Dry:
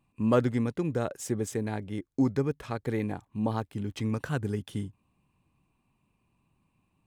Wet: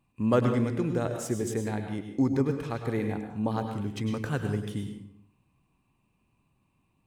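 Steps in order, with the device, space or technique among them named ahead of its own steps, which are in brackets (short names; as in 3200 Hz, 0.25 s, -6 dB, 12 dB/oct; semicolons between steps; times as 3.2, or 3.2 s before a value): bathroom (reverb RT60 0.65 s, pre-delay 95 ms, DRR 5 dB)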